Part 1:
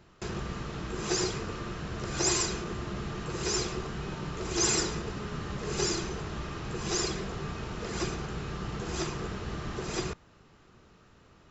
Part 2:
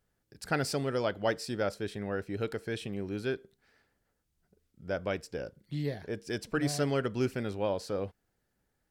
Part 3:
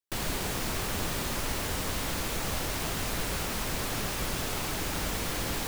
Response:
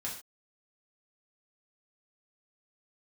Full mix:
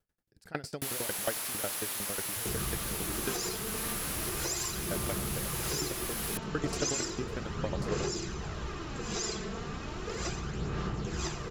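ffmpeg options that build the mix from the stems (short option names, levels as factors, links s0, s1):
-filter_complex "[0:a]aphaser=in_gain=1:out_gain=1:delay=4.6:decay=0.41:speed=0.35:type=sinusoidal,adelay=2250,volume=0.794[s0];[1:a]aeval=exprs='val(0)*pow(10,-26*if(lt(mod(11*n/s,1),2*abs(11)/1000),1-mod(11*n/s,1)/(2*abs(11)/1000),(mod(11*n/s,1)-2*abs(11)/1000)/(1-2*abs(11)/1000))/20)':c=same,volume=1.06[s1];[2:a]highpass=f=1200:p=1,adelay=700,volume=0.631[s2];[s0][s2]amix=inputs=2:normalize=0,equalizer=f=11000:t=o:w=0.42:g=13,alimiter=limit=0.0708:level=0:latency=1:release=384,volume=1[s3];[s1][s3]amix=inputs=2:normalize=0"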